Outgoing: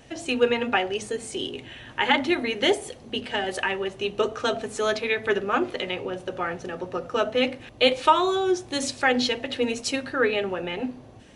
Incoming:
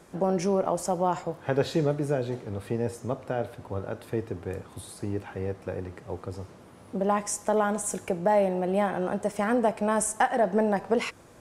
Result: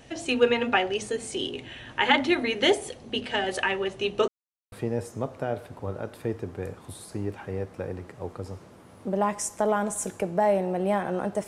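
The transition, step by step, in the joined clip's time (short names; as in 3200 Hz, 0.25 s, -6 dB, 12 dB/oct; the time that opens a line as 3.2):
outgoing
4.28–4.72 mute
4.72 switch to incoming from 2.6 s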